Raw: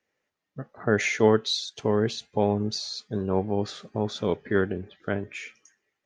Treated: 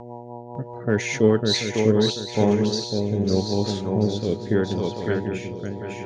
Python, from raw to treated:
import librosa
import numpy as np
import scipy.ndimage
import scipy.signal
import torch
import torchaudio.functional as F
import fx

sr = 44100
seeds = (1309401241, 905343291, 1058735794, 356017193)

p1 = fx.peak_eq(x, sr, hz=1100.0, db=-7.5, octaves=2.5)
p2 = fx.dmg_buzz(p1, sr, base_hz=120.0, harmonics=8, level_db=-42.0, tilt_db=0, odd_only=False)
p3 = fx.echo_swing(p2, sr, ms=736, ratio=3, feedback_pct=30, wet_db=-4.5)
p4 = fx.rotary_switch(p3, sr, hz=5.0, then_hz=0.8, switch_at_s=1.59)
p5 = np.clip(10.0 ** (17.5 / 20.0) * p4, -1.0, 1.0) / 10.0 ** (17.5 / 20.0)
p6 = p4 + (p5 * 10.0 ** (-11.0 / 20.0))
y = p6 * 10.0 ** (4.5 / 20.0)